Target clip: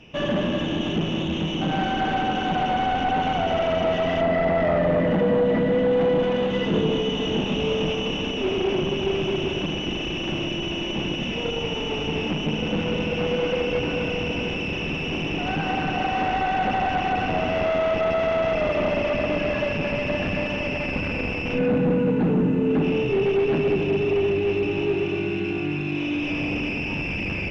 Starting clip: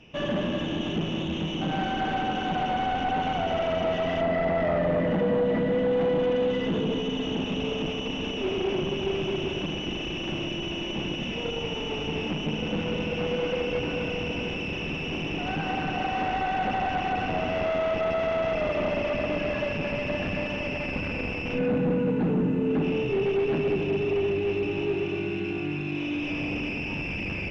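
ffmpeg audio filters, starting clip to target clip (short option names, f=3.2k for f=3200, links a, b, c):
-filter_complex "[0:a]asettb=1/sr,asplit=3[a][b][c];[a]atrim=end=6.204[d];[b]atrim=start=6.2:end=8.22,asetpts=PTS-STARTPTS,afade=t=in:d=0.004:c=qsin,afade=t=out:st=2.016:d=0.004:c=qsin,asplit=2[e][f];[f]adelay=25,volume=-5dB[g];[e][g]amix=inputs=2:normalize=0,atrim=end_sample=89082[h];[c]atrim=start=8.216[i];[d][h]acrossfade=d=0.004:c1=hsin:c2=qsin[j];[j][i]acrossfade=d=0.004:c1=qsin:c2=hsin,volume=4dB"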